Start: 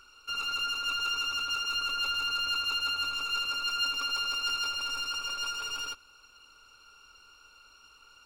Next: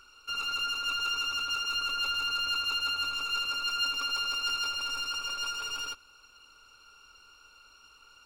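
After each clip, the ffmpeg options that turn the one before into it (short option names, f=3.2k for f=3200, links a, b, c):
-af anull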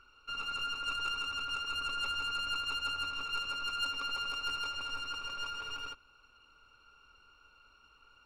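-af "bass=f=250:g=4,treble=f=4k:g=-15,aeval=exprs='0.0708*(cos(1*acos(clip(val(0)/0.0708,-1,1)))-cos(1*PI/2))+0.00794*(cos(3*acos(clip(val(0)/0.0708,-1,1)))-cos(3*PI/2))+0.00282*(cos(6*acos(clip(val(0)/0.0708,-1,1)))-cos(6*PI/2))':c=same"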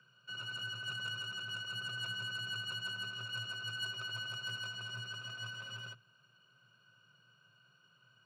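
-af "afreqshift=110,volume=-5dB"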